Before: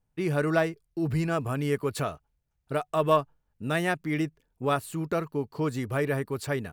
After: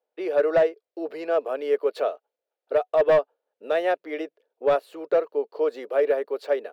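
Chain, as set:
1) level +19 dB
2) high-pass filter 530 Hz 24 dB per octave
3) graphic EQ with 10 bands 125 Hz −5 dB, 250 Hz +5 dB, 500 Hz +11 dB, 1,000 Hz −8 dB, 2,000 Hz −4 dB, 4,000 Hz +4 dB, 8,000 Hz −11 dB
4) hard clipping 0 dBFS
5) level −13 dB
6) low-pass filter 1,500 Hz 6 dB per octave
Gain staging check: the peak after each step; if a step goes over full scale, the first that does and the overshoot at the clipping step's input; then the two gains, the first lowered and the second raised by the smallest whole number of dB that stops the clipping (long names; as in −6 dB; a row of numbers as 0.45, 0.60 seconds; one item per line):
+11.0, +8.5, +9.0, 0.0, −13.0, −13.0 dBFS
step 1, 9.0 dB
step 1 +10 dB, step 5 −4 dB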